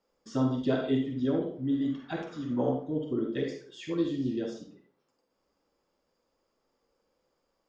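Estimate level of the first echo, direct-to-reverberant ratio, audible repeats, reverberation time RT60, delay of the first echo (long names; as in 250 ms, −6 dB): no echo audible, 2.0 dB, no echo audible, 0.45 s, no echo audible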